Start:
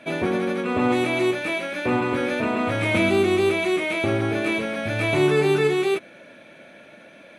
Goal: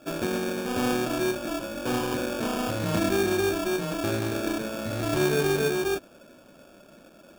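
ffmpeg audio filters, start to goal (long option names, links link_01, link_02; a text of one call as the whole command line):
ffmpeg -i in.wav -af "acrusher=samples=22:mix=1:aa=0.000001,volume=-5dB" out.wav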